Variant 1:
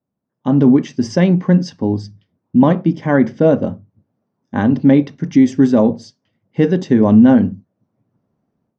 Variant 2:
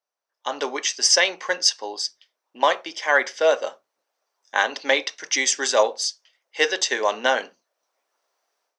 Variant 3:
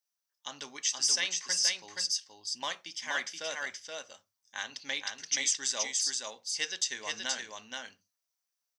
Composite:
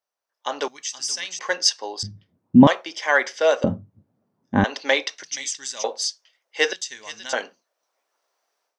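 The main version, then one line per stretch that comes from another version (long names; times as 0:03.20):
2
0:00.68–0:01.39: punch in from 3
0:02.03–0:02.67: punch in from 1
0:03.64–0:04.64: punch in from 1
0:05.23–0:05.84: punch in from 3
0:06.73–0:07.33: punch in from 3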